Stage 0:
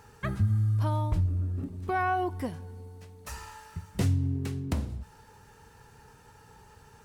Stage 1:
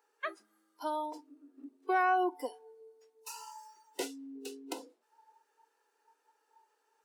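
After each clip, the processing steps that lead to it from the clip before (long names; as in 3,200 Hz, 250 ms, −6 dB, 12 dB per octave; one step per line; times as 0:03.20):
Butterworth high-pass 310 Hz 48 dB per octave
noise reduction from a noise print of the clip's start 19 dB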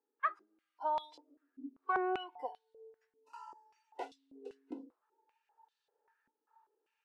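dynamic equaliser 2,100 Hz, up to +6 dB, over −49 dBFS, Q 0.72
band-pass on a step sequencer 5.1 Hz 250–3,700 Hz
level +5 dB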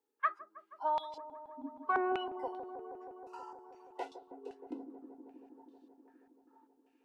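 delay with a low-pass on its return 159 ms, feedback 82%, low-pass 600 Hz, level −8 dB
level +1.5 dB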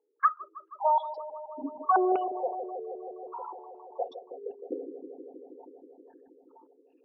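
spectral envelope exaggerated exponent 3
level +8.5 dB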